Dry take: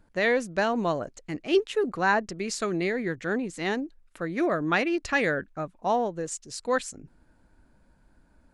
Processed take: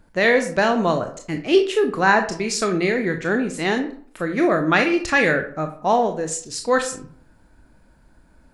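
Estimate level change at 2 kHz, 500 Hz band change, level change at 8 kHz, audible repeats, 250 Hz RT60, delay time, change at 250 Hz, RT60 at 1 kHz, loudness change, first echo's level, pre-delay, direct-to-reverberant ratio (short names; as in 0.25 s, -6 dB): +8.0 dB, +7.0 dB, +8.5 dB, none, 0.55 s, none, +7.0 dB, 0.55 s, +7.5 dB, none, 21 ms, 5.0 dB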